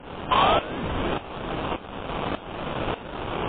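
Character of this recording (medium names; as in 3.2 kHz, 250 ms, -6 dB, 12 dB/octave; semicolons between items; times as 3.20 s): a quantiser's noise floor 6-bit, dither triangular; tremolo saw up 1.7 Hz, depth 90%; aliases and images of a low sample rate 2 kHz, jitter 20%; MP3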